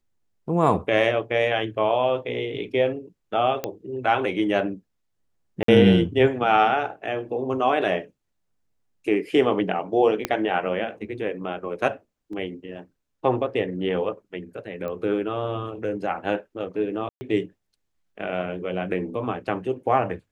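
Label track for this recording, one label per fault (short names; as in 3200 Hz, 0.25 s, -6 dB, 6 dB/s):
3.640000	3.640000	pop -12 dBFS
5.630000	5.680000	gap 53 ms
10.250000	10.250000	pop -8 dBFS
12.330000	12.330000	gap 2.8 ms
14.880000	14.880000	pop -21 dBFS
17.090000	17.210000	gap 0.12 s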